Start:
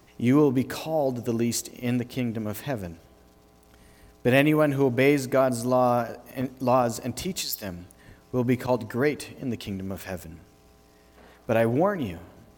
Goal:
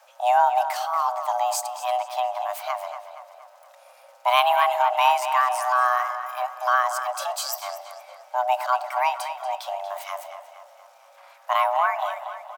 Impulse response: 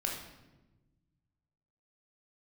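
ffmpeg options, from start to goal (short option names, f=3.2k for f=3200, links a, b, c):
-filter_complex "[0:a]afreqshift=500,asplit=2[a][b];[b]adelay=235,lowpass=f=4.9k:p=1,volume=-9.5dB,asplit=2[c][d];[d]adelay=235,lowpass=f=4.9k:p=1,volume=0.53,asplit=2[e][f];[f]adelay=235,lowpass=f=4.9k:p=1,volume=0.53,asplit=2[g][h];[h]adelay=235,lowpass=f=4.9k:p=1,volume=0.53,asplit=2[i][j];[j]adelay=235,lowpass=f=4.9k:p=1,volume=0.53,asplit=2[k][l];[l]adelay=235,lowpass=f=4.9k:p=1,volume=0.53[m];[a][c][e][g][i][k][m]amix=inputs=7:normalize=0,asplit=2[n][o];[1:a]atrim=start_sample=2205[p];[o][p]afir=irnorm=-1:irlink=0,volume=-21.5dB[q];[n][q]amix=inputs=2:normalize=0"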